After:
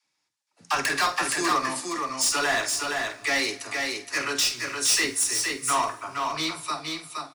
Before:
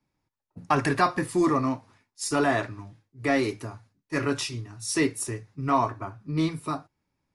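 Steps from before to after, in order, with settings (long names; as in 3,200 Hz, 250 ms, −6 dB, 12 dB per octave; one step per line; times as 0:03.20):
meter weighting curve ITU-R 468
hard clipping −20.5 dBFS, distortion −10 dB
double-tracking delay 47 ms −11.5 dB
all-pass dispersion lows, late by 46 ms, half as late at 390 Hz
on a send: single-tap delay 469 ms −4 dB
on the sum: dense smooth reverb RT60 2.3 s, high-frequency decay 0.8×, DRR 17.5 dB
level +1 dB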